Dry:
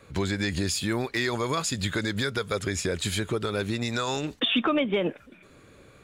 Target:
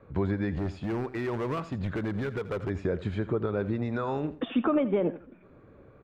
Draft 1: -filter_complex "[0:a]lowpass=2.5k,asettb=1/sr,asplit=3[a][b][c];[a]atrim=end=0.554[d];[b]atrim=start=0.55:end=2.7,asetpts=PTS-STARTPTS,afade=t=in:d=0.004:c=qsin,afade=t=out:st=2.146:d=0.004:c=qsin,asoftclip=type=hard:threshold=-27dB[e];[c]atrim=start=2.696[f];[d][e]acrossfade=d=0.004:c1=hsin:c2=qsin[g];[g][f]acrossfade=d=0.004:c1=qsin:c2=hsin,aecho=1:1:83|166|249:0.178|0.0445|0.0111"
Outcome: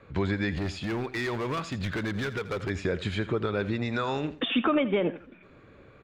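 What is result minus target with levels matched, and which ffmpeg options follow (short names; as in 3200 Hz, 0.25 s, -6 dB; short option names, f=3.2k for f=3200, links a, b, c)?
2000 Hz band +6.5 dB
-filter_complex "[0:a]lowpass=1.1k,asettb=1/sr,asplit=3[a][b][c];[a]atrim=end=0.554[d];[b]atrim=start=0.55:end=2.7,asetpts=PTS-STARTPTS,afade=t=in:d=0.004:c=qsin,afade=t=out:st=2.146:d=0.004:c=qsin,asoftclip=type=hard:threshold=-27dB[e];[c]atrim=start=2.696[f];[d][e]acrossfade=d=0.004:c1=hsin:c2=qsin[g];[g][f]acrossfade=d=0.004:c1=qsin:c2=hsin,aecho=1:1:83|166|249:0.178|0.0445|0.0111"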